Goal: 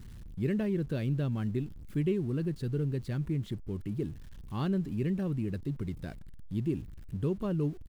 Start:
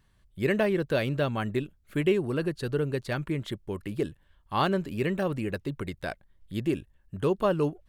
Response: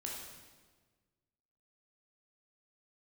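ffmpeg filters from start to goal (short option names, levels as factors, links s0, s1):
-af "aeval=exprs='val(0)+0.5*0.0112*sgn(val(0))':c=same,firequalizer=gain_entry='entry(170,0);entry(610,-16);entry(4200,-13)':delay=0.05:min_phase=1"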